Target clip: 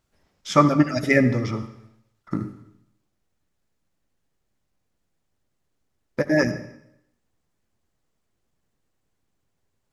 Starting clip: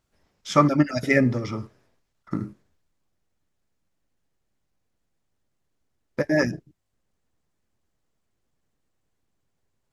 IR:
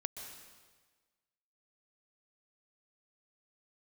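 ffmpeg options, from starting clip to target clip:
-filter_complex "[0:a]asplit=2[a][b];[1:a]atrim=start_sample=2205,asetrate=79380,aresample=44100[c];[b][c]afir=irnorm=-1:irlink=0,volume=2.5dB[d];[a][d]amix=inputs=2:normalize=0,volume=-2.5dB"

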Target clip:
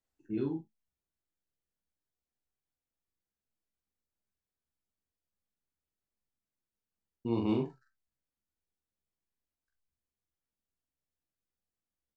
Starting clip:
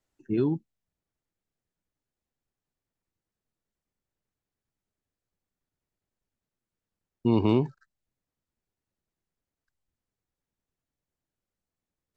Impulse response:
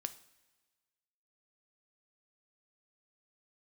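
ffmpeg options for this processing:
-filter_complex "[0:a]aecho=1:1:15|43|66:0.501|0.631|0.188[a];[1:a]atrim=start_sample=2205,atrim=end_sample=3087[b];[a][b]afir=irnorm=-1:irlink=0,volume=-8.5dB"

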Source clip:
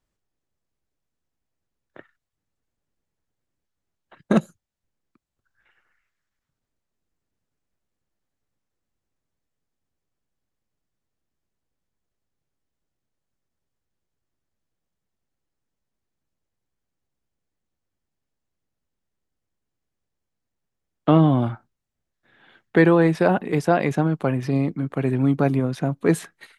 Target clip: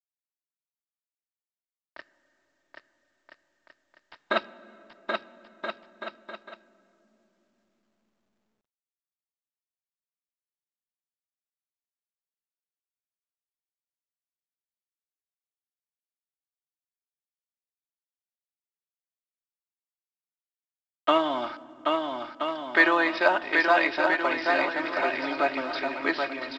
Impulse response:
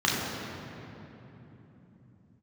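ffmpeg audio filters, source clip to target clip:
-filter_complex "[0:a]highpass=800,highshelf=f=2k:g=6.5,aecho=1:1:3.2:0.66,aresample=11025,aeval=exprs='val(0)*gte(abs(val(0)),0.00631)':c=same,aresample=44100,aecho=1:1:780|1326|1708|1976|2163:0.631|0.398|0.251|0.158|0.1,asplit=2[a][b];[1:a]atrim=start_sample=2205,asetrate=48510,aresample=44100[c];[b][c]afir=irnorm=-1:irlink=0,volume=-31dB[d];[a][d]amix=inputs=2:normalize=0" -ar 16000 -c:a pcm_mulaw

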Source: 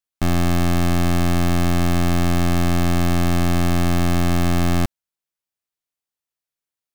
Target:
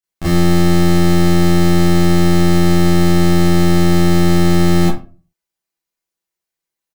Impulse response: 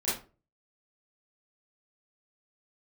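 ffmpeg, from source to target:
-filter_complex "[0:a]aecho=1:1:6.1:0.4[a];[1:a]atrim=start_sample=2205[b];[a][b]afir=irnorm=-1:irlink=0,volume=-2dB"

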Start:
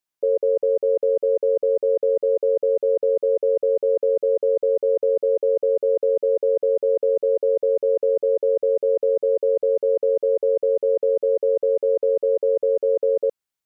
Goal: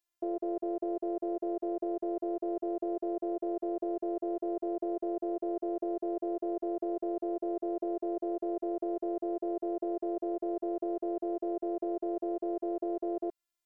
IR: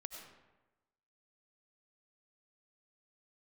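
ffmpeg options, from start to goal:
-af "alimiter=limit=-17.5dB:level=0:latency=1:release=149,afftfilt=real='hypot(re,im)*cos(PI*b)':imag='0':win_size=512:overlap=0.75,volume=1dB"

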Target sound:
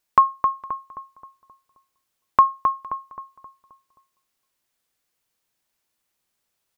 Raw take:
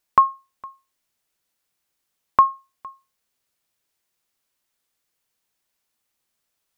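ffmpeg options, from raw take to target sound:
-filter_complex "[0:a]asplit=2[a][b];[b]adelay=264,lowpass=f=1.6k:p=1,volume=-5dB,asplit=2[c][d];[d]adelay=264,lowpass=f=1.6k:p=1,volume=0.48,asplit=2[e][f];[f]adelay=264,lowpass=f=1.6k:p=1,volume=0.48,asplit=2[g][h];[h]adelay=264,lowpass=f=1.6k:p=1,volume=0.48,asplit=2[i][j];[j]adelay=264,lowpass=f=1.6k:p=1,volume=0.48,asplit=2[k][l];[l]adelay=264,lowpass=f=1.6k:p=1,volume=0.48[m];[a][c][e][g][i][k][m]amix=inputs=7:normalize=0"

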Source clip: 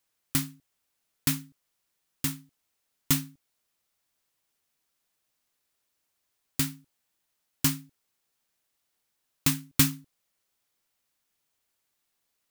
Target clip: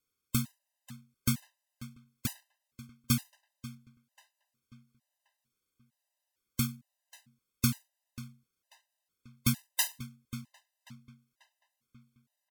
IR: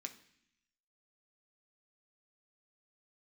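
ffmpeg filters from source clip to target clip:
-filter_complex "[0:a]lowshelf=f=460:g=4,asetrate=38170,aresample=44100,atempo=1.15535,asplit=2[a][b];[b]adelay=539,lowpass=f=4.4k:p=1,volume=-15dB,asplit=2[c][d];[d]adelay=539,lowpass=f=4.4k:p=1,volume=0.5,asplit=2[e][f];[f]adelay=539,lowpass=f=4.4k:p=1,volume=0.5,asplit=2[g][h];[h]adelay=539,lowpass=f=4.4k:p=1,volume=0.5,asplit=2[i][j];[j]adelay=539,lowpass=f=4.4k:p=1,volume=0.5[k];[a][c][e][g][i][k]amix=inputs=6:normalize=0,afftfilt=real='re*gt(sin(2*PI*1.1*pts/sr)*(1-2*mod(floor(b*sr/1024/520),2)),0)':imag='im*gt(sin(2*PI*1.1*pts/sr)*(1-2*mod(floor(b*sr/1024/520),2)),0)':win_size=1024:overlap=0.75,volume=-3.5dB"

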